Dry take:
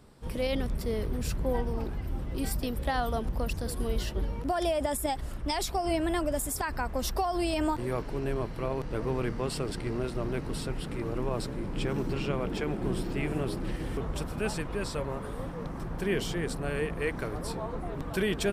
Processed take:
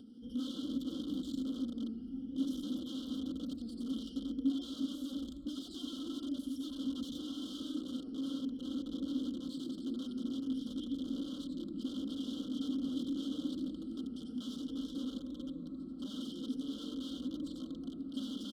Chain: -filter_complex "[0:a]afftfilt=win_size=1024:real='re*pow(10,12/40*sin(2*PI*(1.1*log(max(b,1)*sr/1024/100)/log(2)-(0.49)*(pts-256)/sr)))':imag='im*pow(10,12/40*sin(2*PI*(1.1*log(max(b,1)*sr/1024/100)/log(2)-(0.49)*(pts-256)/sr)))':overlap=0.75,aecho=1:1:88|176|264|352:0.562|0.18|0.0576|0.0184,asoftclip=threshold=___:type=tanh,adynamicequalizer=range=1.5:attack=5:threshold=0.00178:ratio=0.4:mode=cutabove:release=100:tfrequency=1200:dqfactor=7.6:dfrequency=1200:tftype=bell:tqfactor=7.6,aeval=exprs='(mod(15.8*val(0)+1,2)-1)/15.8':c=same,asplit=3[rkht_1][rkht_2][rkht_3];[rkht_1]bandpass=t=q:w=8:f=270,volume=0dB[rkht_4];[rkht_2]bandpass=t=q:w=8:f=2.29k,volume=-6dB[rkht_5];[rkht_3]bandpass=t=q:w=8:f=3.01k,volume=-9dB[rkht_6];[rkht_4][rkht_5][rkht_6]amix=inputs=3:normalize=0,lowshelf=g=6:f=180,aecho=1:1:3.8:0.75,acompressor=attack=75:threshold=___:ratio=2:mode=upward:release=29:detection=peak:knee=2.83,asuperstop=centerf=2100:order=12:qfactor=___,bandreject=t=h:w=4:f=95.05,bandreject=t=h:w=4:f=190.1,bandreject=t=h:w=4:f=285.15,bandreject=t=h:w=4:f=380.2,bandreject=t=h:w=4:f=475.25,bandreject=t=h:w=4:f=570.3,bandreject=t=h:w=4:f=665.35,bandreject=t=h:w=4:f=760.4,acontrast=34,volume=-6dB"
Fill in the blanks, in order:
-14dB, -49dB, 1.2